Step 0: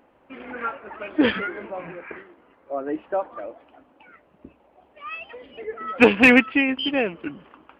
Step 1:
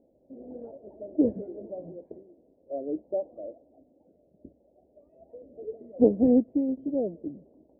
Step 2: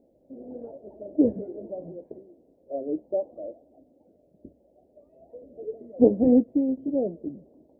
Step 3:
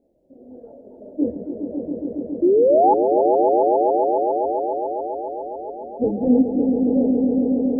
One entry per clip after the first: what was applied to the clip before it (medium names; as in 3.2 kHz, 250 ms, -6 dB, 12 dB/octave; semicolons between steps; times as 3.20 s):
elliptic low-pass 630 Hz, stop band 50 dB; trim -3.5 dB
flange 1.1 Hz, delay 4.5 ms, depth 4.3 ms, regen -76%; trim +6.5 dB
chorus voices 6, 1.3 Hz, delay 26 ms, depth 3 ms; painted sound rise, 2.42–2.94 s, 330–880 Hz -16 dBFS; echo with a slow build-up 138 ms, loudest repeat 5, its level -7 dB; trim +1.5 dB